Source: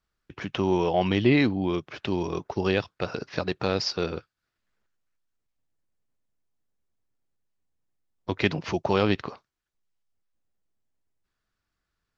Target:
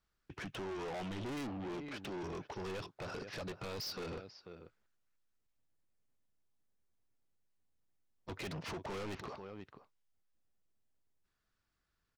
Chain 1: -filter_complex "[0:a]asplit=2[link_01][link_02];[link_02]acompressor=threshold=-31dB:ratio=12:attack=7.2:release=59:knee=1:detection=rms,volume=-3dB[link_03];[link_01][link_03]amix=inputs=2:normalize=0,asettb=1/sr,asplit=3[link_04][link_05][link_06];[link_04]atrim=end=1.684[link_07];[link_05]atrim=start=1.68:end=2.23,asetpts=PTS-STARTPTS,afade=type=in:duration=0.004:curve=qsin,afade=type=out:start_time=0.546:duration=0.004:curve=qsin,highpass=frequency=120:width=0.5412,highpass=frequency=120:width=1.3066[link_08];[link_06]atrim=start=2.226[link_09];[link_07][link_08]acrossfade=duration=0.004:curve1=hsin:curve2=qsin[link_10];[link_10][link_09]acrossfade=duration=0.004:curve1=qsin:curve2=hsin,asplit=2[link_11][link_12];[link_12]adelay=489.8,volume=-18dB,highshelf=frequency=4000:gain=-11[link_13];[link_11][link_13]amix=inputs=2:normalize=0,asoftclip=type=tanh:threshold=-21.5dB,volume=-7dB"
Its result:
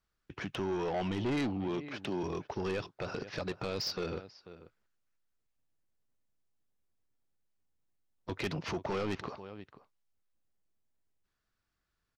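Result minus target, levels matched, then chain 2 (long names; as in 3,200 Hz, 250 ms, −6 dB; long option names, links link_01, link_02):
soft clipping: distortion −6 dB
-filter_complex "[0:a]asplit=2[link_01][link_02];[link_02]acompressor=threshold=-31dB:ratio=12:attack=7.2:release=59:knee=1:detection=rms,volume=-3dB[link_03];[link_01][link_03]amix=inputs=2:normalize=0,asettb=1/sr,asplit=3[link_04][link_05][link_06];[link_04]atrim=end=1.684[link_07];[link_05]atrim=start=1.68:end=2.23,asetpts=PTS-STARTPTS,afade=type=in:duration=0.004:curve=qsin,afade=type=out:start_time=0.546:duration=0.004:curve=qsin,highpass=frequency=120:width=0.5412,highpass=frequency=120:width=1.3066[link_08];[link_06]atrim=start=2.226[link_09];[link_07][link_08]acrossfade=duration=0.004:curve1=hsin:curve2=qsin[link_10];[link_10][link_09]acrossfade=duration=0.004:curve1=qsin:curve2=hsin,asplit=2[link_11][link_12];[link_12]adelay=489.8,volume=-18dB,highshelf=frequency=4000:gain=-11[link_13];[link_11][link_13]amix=inputs=2:normalize=0,asoftclip=type=tanh:threshold=-32.5dB,volume=-7dB"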